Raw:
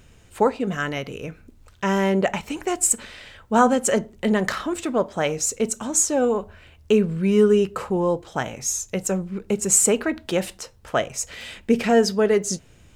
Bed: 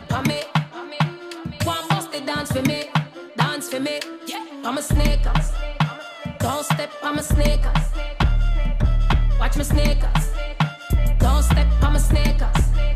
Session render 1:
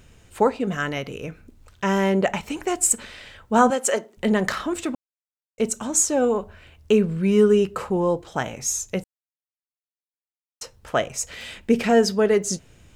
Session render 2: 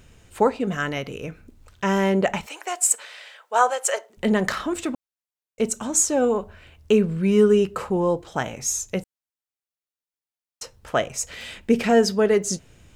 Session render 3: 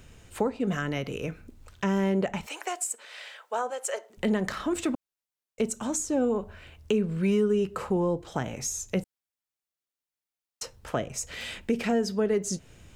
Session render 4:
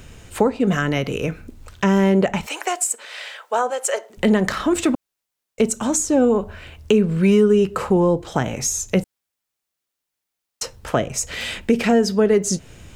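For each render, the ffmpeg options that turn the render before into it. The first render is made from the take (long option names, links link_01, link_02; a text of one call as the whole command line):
ffmpeg -i in.wav -filter_complex "[0:a]asettb=1/sr,asplit=3[link_01][link_02][link_03];[link_01]atrim=end=3.704[link_04];[link_02]atrim=start=3.7:end=4.17,asetpts=PTS-STARTPTS,afade=type=in:duration=0.004:curve=qsin,afade=type=out:start_time=0.466:duration=0.004:curve=qsin,highpass=420[link_05];[link_03]atrim=start=4.166[link_06];[link_04][link_05]acrossfade=duration=0.004:curve1=hsin:curve2=qsin[link_07];[link_07][link_06]acrossfade=duration=0.004:curve1=qsin:curve2=hsin,asplit=5[link_08][link_09][link_10][link_11][link_12];[link_08]atrim=end=4.95,asetpts=PTS-STARTPTS,afade=type=out:start_time=4.946:duration=0.004:curve=hsin[link_13];[link_09]atrim=start=4.95:end=5.58,asetpts=PTS-STARTPTS,volume=0[link_14];[link_10]atrim=start=5.58:end=9.04,asetpts=PTS-STARTPTS,afade=type=in:duration=0.004:curve=hsin,afade=type=out:start_time=3.456:duration=0.004:curve=hsin[link_15];[link_11]atrim=start=9.04:end=10.61,asetpts=PTS-STARTPTS,volume=0[link_16];[link_12]atrim=start=10.61,asetpts=PTS-STARTPTS,afade=type=in:duration=0.004:curve=hsin[link_17];[link_13][link_14][link_15][link_16][link_17]concat=n=5:v=0:a=1" out.wav
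ffmpeg -i in.wav -filter_complex "[0:a]asettb=1/sr,asplit=3[link_01][link_02][link_03];[link_01]atrim=end=2.464[link_04];[link_02]atrim=start=2.46:end=4.1,asetpts=PTS-STARTPTS,afade=type=in:duration=0.004:curve=qsin,afade=type=out:start_time=1.636:duration=0.004:curve=qsin,highpass=frequency=540:width=0.5412,highpass=frequency=540:width=1.3066[link_05];[link_03]atrim=start=4.096[link_06];[link_04][link_05]acrossfade=duration=0.004:curve1=hsin:curve2=qsin[link_07];[link_07][link_06]acrossfade=duration=0.004:curve1=qsin:curve2=hsin" out.wav
ffmpeg -i in.wav -filter_complex "[0:a]acrossover=split=380[link_01][link_02];[link_01]alimiter=limit=-20.5dB:level=0:latency=1:release=472[link_03];[link_02]acompressor=threshold=-30dB:ratio=6[link_04];[link_03][link_04]amix=inputs=2:normalize=0" out.wav
ffmpeg -i in.wav -af "volume=9.5dB" out.wav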